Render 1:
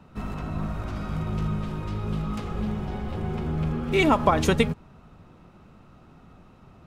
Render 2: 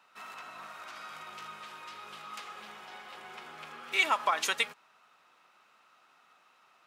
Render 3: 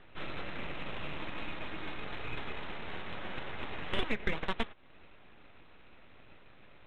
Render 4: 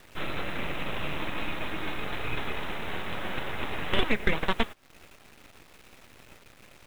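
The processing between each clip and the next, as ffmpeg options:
-af "highpass=1.3k"
-af "acompressor=threshold=-41dB:ratio=3,aresample=8000,aeval=exprs='abs(val(0))':c=same,aresample=44100,adynamicsmooth=sensitivity=4:basefreq=2.7k,volume=11.5dB"
-af "acrusher=bits=9:mix=0:aa=0.000001,aeval=exprs='sgn(val(0))*max(abs(val(0))-0.0015,0)':c=same,volume=7.5dB"

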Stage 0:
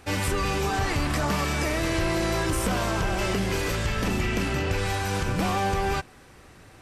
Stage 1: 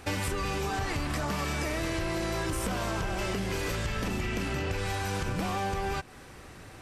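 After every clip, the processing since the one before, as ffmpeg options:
-af "acompressor=threshold=-31dB:ratio=6,volume=2.5dB"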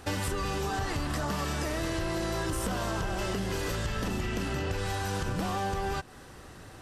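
-af "equalizer=f=2.3k:w=5.9:g=-8.5"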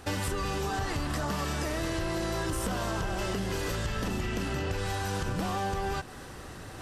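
-af "areverse,acompressor=mode=upward:threshold=-36dB:ratio=2.5,areverse,asoftclip=type=hard:threshold=-22.5dB"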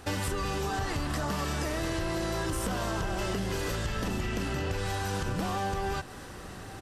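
-af "aecho=1:1:1067:0.0944"

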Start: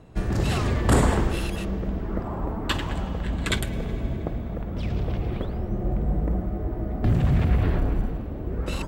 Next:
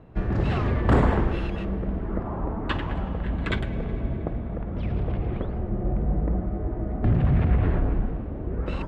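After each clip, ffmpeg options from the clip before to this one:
-af "lowpass=2.3k"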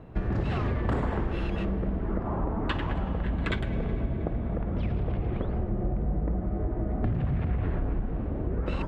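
-af "acompressor=threshold=-27dB:ratio=6,volume=2.5dB"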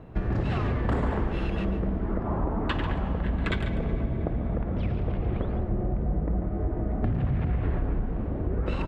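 -af "aecho=1:1:143:0.282,volume=1dB"

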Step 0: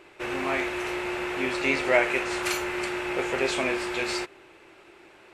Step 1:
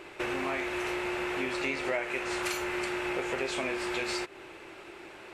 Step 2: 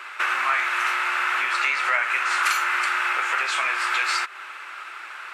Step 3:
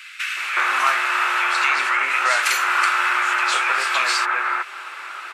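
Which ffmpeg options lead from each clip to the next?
-af "acompressor=threshold=-36dB:ratio=4,volume=5dB"
-af "highpass=f=1.3k:t=q:w=3.6,volume=7.5dB"
-filter_complex "[0:a]acrossover=split=2000[a][b];[a]adelay=370[c];[c][b]amix=inputs=2:normalize=0,volume=5.5dB"

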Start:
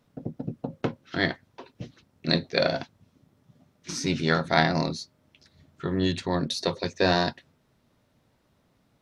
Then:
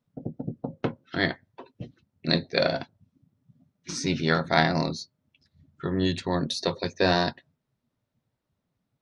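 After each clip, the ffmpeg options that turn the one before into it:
-af "afftdn=nr=15:nf=-50"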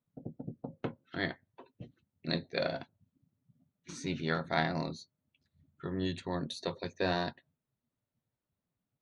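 -af "equalizer=f=5.2k:w=5.1:g=-13,volume=-9dB"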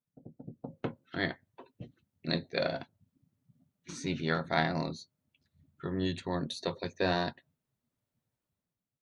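-af "dynaudnorm=f=130:g=9:m=10dB,volume=-8dB"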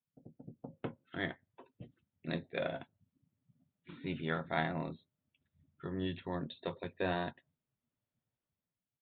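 -af "aresample=8000,aresample=44100,volume=-5dB"

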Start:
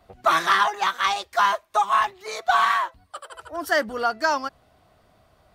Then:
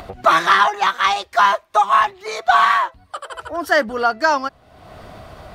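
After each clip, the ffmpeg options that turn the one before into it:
-af "highshelf=f=6.4k:g=-8,acompressor=mode=upward:threshold=-30dB:ratio=2.5,volume=6dB"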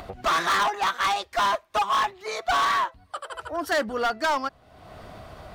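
-af "asoftclip=type=hard:threshold=-15dB,volume=-4.5dB"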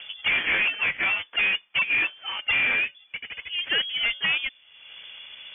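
-af "acrusher=samples=9:mix=1:aa=0.000001,lowpass=f=3k:t=q:w=0.5098,lowpass=f=3k:t=q:w=0.6013,lowpass=f=3k:t=q:w=0.9,lowpass=f=3k:t=q:w=2.563,afreqshift=-3500"

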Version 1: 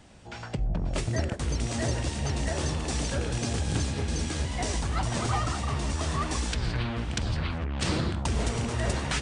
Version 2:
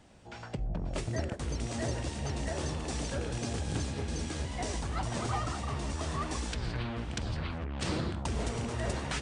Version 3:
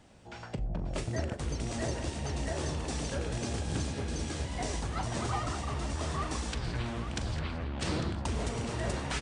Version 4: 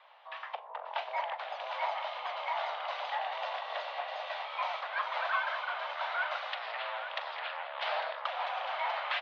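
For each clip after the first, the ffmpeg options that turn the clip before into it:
-af "equalizer=f=490:w=0.46:g=3,volume=-6.5dB"
-af "aecho=1:1:40|850:0.2|0.282"
-af "highpass=f=350:t=q:w=0.5412,highpass=f=350:t=q:w=1.307,lowpass=f=3.4k:t=q:w=0.5176,lowpass=f=3.4k:t=q:w=0.7071,lowpass=f=3.4k:t=q:w=1.932,afreqshift=300,volume=4dB"

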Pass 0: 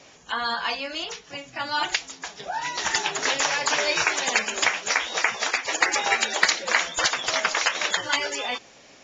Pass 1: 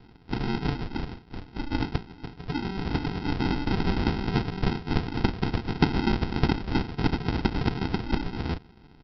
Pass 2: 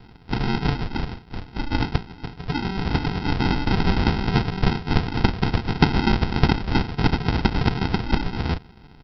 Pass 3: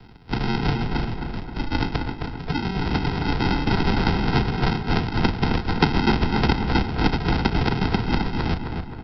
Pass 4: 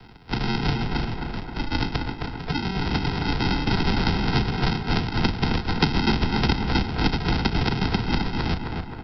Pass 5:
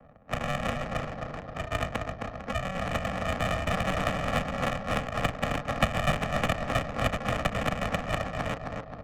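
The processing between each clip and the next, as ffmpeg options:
-af "bandreject=f=1.6k:w=5.5,aresample=11025,acrusher=samples=19:mix=1:aa=0.000001,aresample=44100"
-af "equalizer=f=310:t=o:w=0.91:g=-4.5,volume=6.5dB"
-filter_complex "[0:a]acrossover=split=210|550|1600[a][b][c][d];[a]asoftclip=type=tanh:threshold=-17.5dB[e];[e][b][c][d]amix=inputs=4:normalize=0,asplit=2[f][g];[g]adelay=264,lowpass=f=2.7k:p=1,volume=-5dB,asplit=2[h][i];[i]adelay=264,lowpass=f=2.7k:p=1,volume=0.52,asplit=2[j][k];[k]adelay=264,lowpass=f=2.7k:p=1,volume=0.52,asplit=2[l][m];[m]adelay=264,lowpass=f=2.7k:p=1,volume=0.52,asplit=2[n][o];[o]adelay=264,lowpass=f=2.7k:p=1,volume=0.52,asplit=2[p][q];[q]adelay=264,lowpass=f=2.7k:p=1,volume=0.52,asplit=2[r][s];[s]adelay=264,lowpass=f=2.7k:p=1,volume=0.52[t];[f][h][j][l][n][p][r][t]amix=inputs=8:normalize=0"
-filter_complex "[0:a]lowshelf=f=490:g=-4.5,acrossover=split=300|3000[a][b][c];[b]acompressor=threshold=-37dB:ratio=1.5[d];[a][d][c]amix=inputs=3:normalize=0,volume=3dB"
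-af "highpass=f=290:t=q:w=0.5412,highpass=f=290:t=q:w=1.307,lowpass=f=3.1k:t=q:w=0.5176,lowpass=f=3.1k:t=q:w=0.7071,lowpass=f=3.1k:t=q:w=1.932,afreqshift=-210,adynamicsmooth=sensitivity=6.5:basefreq=770"

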